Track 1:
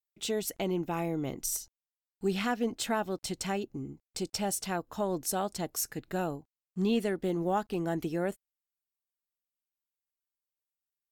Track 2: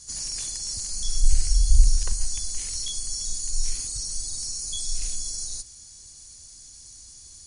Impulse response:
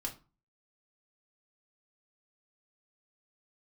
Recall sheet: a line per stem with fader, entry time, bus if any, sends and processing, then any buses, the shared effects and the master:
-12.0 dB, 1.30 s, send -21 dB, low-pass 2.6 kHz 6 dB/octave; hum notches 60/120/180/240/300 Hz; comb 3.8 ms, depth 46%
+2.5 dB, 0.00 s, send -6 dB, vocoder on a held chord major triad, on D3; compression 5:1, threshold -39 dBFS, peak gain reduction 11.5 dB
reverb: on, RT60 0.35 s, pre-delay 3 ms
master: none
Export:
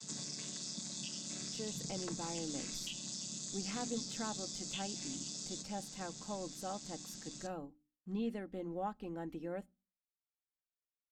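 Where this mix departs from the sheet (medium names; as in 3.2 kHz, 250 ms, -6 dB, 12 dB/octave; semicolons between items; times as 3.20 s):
stem 2 +2.5 dB -> -4.5 dB; master: extra bass shelf 140 Hz +4.5 dB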